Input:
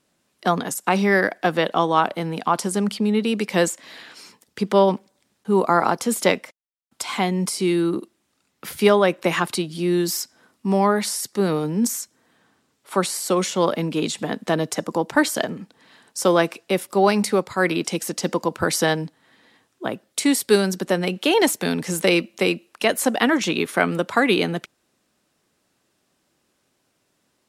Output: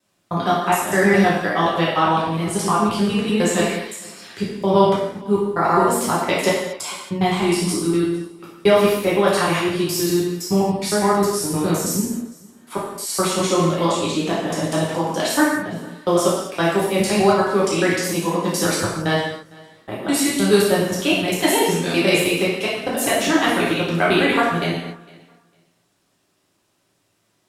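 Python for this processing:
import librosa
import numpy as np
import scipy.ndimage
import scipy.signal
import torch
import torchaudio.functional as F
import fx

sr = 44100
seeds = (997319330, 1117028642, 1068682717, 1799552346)

y = fx.block_reorder(x, sr, ms=103.0, group=3)
y = fx.echo_feedback(y, sr, ms=455, feedback_pct=18, wet_db=-23.5)
y = fx.rev_gated(y, sr, seeds[0], gate_ms=300, shape='falling', drr_db=-7.5)
y = y * librosa.db_to_amplitude(-5.5)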